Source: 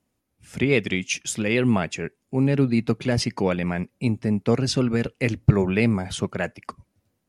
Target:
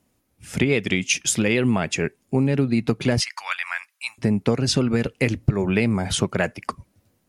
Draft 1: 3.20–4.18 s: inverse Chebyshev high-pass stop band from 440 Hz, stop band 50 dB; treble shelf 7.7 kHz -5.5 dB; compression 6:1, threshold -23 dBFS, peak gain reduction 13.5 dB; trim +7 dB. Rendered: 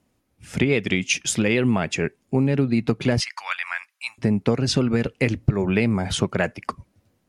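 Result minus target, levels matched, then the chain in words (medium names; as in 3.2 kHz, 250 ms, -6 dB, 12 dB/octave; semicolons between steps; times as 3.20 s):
8 kHz band -2.5 dB
3.20–4.18 s: inverse Chebyshev high-pass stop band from 440 Hz, stop band 50 dB; treble shelf 7.7 kHz +3 dB; compression 6:1, threshold -23 dBFS, peak gain reduction 13.5 dB; trim +7 dB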